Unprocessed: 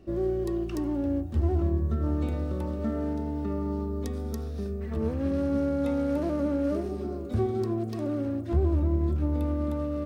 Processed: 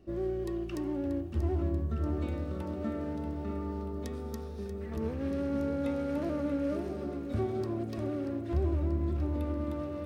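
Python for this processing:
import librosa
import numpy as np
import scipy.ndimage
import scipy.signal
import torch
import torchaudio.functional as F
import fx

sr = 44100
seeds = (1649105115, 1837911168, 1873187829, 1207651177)

y = fx.vibrato(x, sr, rate_hz=10.0, depth_cents=9.3)
y = fx.echo_feedback(y, sr, ms=635, feedback_pct=58, wet_db=-10)
y = fx.dynamic_eq(y, sr, hz=2300.0, q=0.9, threshold_db=-50.0, ratio=4.0, max_db=5)
y = y * 10.0 ** (-5.5 / 20.0)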